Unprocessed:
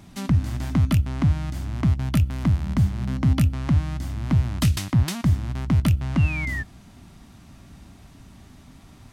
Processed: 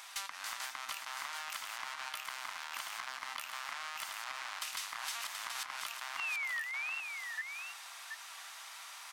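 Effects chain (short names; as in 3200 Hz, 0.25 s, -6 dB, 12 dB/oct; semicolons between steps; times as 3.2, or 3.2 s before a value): reverse delay 0.412 s, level -7.5 dB; HPF 1000 Hz 24 dB/oct; limiter -25 dBFS, peak gain reduction 11 dB; compressor 5:1, threshold -45 dBFS, peak gain reduction 13.5 dB; soft clip -35 dBFS, distortion -21 dB; on a send: echo 0.729 s -6 dB; on the sum: gain +8 dB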